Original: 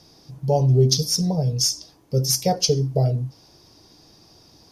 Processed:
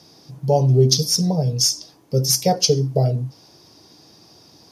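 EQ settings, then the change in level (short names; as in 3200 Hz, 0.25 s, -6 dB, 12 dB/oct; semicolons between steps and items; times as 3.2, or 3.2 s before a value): HPF 110 Hz; +3.0 dB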